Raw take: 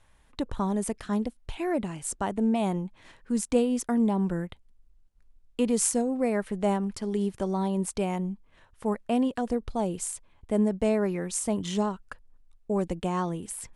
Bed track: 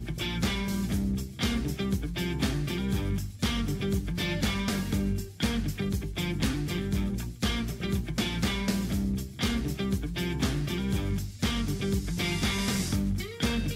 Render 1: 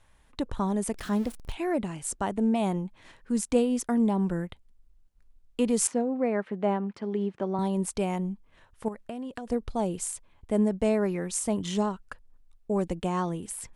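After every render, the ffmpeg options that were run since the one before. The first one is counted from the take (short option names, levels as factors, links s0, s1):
-filter_complex "[0:a]asettb=1/sr,asplit=3[s0][s1][s2];[s0]atrim=end=0.944[s3];[s1]atrim=start=0.94:end=1.53,asetpts=PTS-STARTPTS,afade=t=in:d=0.004:c=qsin,afade=t=out:st=0.586:d=0.004:c=qsin,aeval=exprs='val(0)+0.5*0.0112*sgn(val(0))':c=same[s4];[s2]atrim=start=1.526[s5];[s3][s4]acrossfade=d=0.004:c1=hsin:c2=qsin[s6];[s6][s5]acrossfade=d=0.004:c1=qsin:c2=hsin,asettb=1/sr,asplit=3[s7][s8][s9];[s7]atrim=end=5.874[s10];[s8]atrim=start=5.87:end=7.59,asetpts=PTS-STARTPTS,afade=t=in:d=0.004:c=qsin,afade=t=out:st=1.716:d=0.004:c=qsin,highpass=180,lowpass=2600[s11];[s9]atrim=start=7.586[s12];[s10][s11]acrossfade=d=0.004:c1=hsin:c2=qsin[s13];[s13][s12]acrossfade=d=0.004:c1=qsin:c2=hsin,asettb=1/sr,asplit=3[s14][s15][s16];[s14]atrim=end=8.884[s17];[s15]atrim=start=8.88:end=9.52,asetpts=PTS-STARTPTS,afade=t=in:d=0.004:c=qsin,afade=t=out:st=0.636:d=0.004:c=qsin,acompressor=threshold=0.0251:ratio=16:attack=3.2:release=140:knee=1:detection=peak[s18];[s16]atrim=start=9.516[s19];[s17][s18]acrossfade=d=0.004:c1=hsin:c2=qsin[s20];[s20][s19]acrossfade=d=0.004:c1=qsin:c2=hsin"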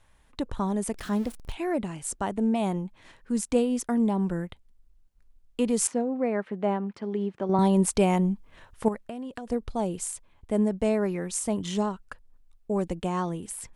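-filter_complex "[0:a]asettb=1/sr,asplit=3[s0][s1][s2];[s0]atrim=end=7.494[s3];[s1]atrim=start=7.49:end=8.98,asetpts=PTS-STARTPTS,afade=t=in:d=0.004:c=qsin,afade=t=out:st=1.486:d=0.004:c=qsin,acontrast=73[s4];[s2]atrim=start=8.976[s5];[s3][s4]acrossfade=d=0.004:c1=hsin:c2=qsin[s6];[s6][s5]acrossfade=d=0.004:c1=qsin:c2=hsin"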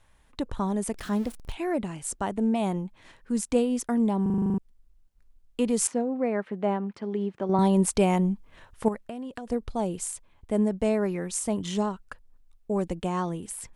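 -filter_complex "[0:a]asplit=10[s0][s1][s2][s3][s4][s5][s6][s7][s8][s9];[s0]atrim=end=4.262[s10];[s1]atrim=start=4.218:end=4.262[s11];[s2]atrim=start=4.218:end=4.262[s12];[s3]atrim=start=4.218:end=4.262[s13];[s4]atrim=start=4.218:end=4.262[s14];[s5]atrim=start=4.218:end=4.262[s15];[s6]atrim=start=4.218:end=4.262[s16];[s7]atrim=start=4.218:end=4.262[s17];[s8]atrim=start=4.218:end=4.262[s18];[s9]atrim=start=4.578[s19];[s10][s11]acrossfade=d=0.004:c1=hsin:c2=hsin[s20];[s20][s12]acrossfade=d=0.004:c1=hsin:c2=hsin[s21];[s21][s13]acrossfade=d=0.004:c1=hsin:c2=hsin[s22];[s22][s14]acrossfade=d=0.004:c1=hsin:c2=hsin[s23];[s23][s15]acrossfade=d=0.004:c1=hsin:c2=hsin[s24];[s24][s16]acrossfade=d=0.004:c1=hsin:c2=hsin[s25];[s25][s17]acrossfade=d=0.004:c1=hsin:c2=hsin[s26];[s26][s18]acrossfade=d=0.004:c1=hsin:c2=hsin[s27];[s27][s19]acrossfade=d=0.004:c1=hsin:c2=hsin"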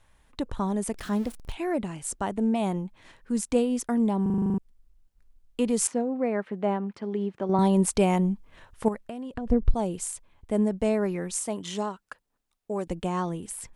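-filter_complex "[0:a]asettb=1/sr,asplit=3[s0][s1][s2];[s0]atrim=end=9.344[s3];[s1]atrim=start=9.34:end=9.74,asetpts=PTS-STARTPTS,afade=t=in:d=0.004:c=qsin,afade=t=out:st=0.396:d=0.004:c=qsin,aemphasis=mode=reproduction:type=riaa[s4];[s2]atrim=start=9.736[s5];[s3][s4]acrossfade=d=0.004:c1=hsin:c2=qsin[s6];[s6][s5]acrossfade=d=0.004:c1=qsin:c2=hsin,asettb=1/sr,asplit=3[s7][s8][s9];[s7]atrim=end=11.434[s10];[s8]atrim=start=11.43:end=12.87,asetpts=PTS-STARTPTS,afade=t=in:d=0.004:c=qsin,afade=t=out:st=1.436:d=0.004:c=qsin,highpass=f=360:p=1[s11];[s9]atrim=start=12.866[s12];[s10][s11]acrossfade=d=0.004:c1=hsin:c2=qsin[s13];[s13][s12]acrossfade=d=0.004:c1=qsin:c2=hsin"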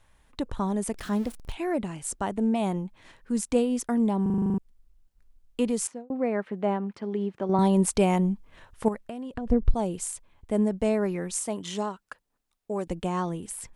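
-filter_complex "[0:a]asplit=2[s0][s1];[s0]atrim=end=6.1,asetpts=PTS-STARTPTS,afade=t=out:st=5.64:d=0.46[s2];[s1]atrim=start=6.1,asetpts=PTS-STARTPTS,afade=t=in:d=0.004:c=hsin[s3];[s2][s3]concat=n=2:v=0:a=1"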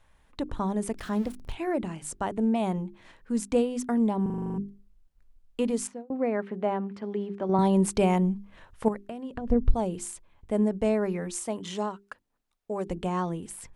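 -af "highshelf=f=4500:g=-5.5,bandreject=f=50:t=h:w=6,bandreject=f=100:t=h:w=6,bandreject=f=150:t=h:w=6,bandreject=f=200:t=h:w=6,bandreject=f=250:t=h:w=6,bandreject=f=300:t=h:w=6,bandreject=f=350:t=h:w=6,bandreject=f=400:t=h:w=6"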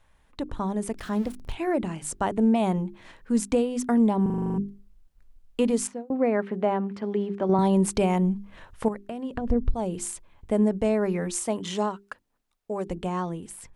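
-af "alimiter=limit=0.133:level=0:latency=1:release=356,dynaudnorm=f=180:g=17:m=1.68"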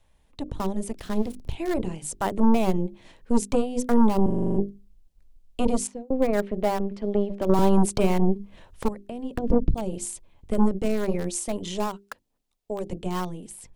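-filter_complex "[0:a]acrossover=split=360|1000|2000[s0][s1][s2][s3];[s0]aeval=exprs='0.237*(cos(1*acos(clip(val(0)/0.237,-1,1)))-cos(1*PI/2))+0.0944*(cos(6*acos(clip(val(0)/0.237,-1,1)))-cos(6*PI/2))':c=same[s4];[s2]acrusher=bits=5:mix=0:aa=0.000001[s5];[s4][s1][s5][s3]amix=inputs=4:normalize=0"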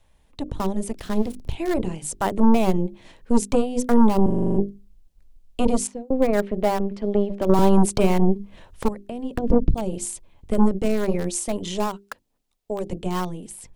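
-af "volume=1.41"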